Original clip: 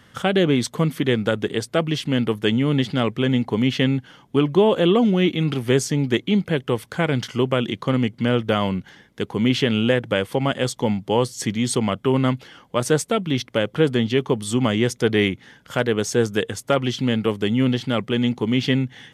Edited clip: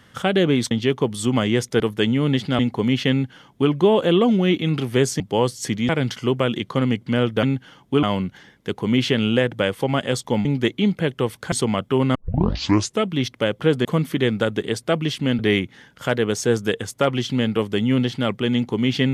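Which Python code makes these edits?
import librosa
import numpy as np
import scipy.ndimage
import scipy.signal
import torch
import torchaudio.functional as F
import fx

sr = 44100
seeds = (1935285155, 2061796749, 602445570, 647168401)

y = fx.edit(x, sr, fx.swap(start_s=0.71, length_s=1.54, other_s=13.99, other_length_s=1.09),
    fx.cut(start_s=3.04, length_s=0.29),
    fx.duplicate(start_s=3.85, length_s=0.6, to_s=8.55),
    fx.swap(start_s=5.94, length_s=1.07, other_s=10.97, other_length_s=0.69),
    fx.tape_start(start_s=12.29, length_s=0.89), tone=tone)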